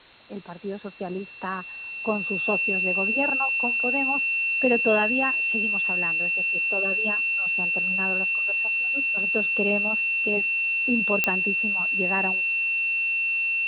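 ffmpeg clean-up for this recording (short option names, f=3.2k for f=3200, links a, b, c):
-af "adeclick=t=4,bandreject=f=2.7k:w=30,afwtdn=0.004"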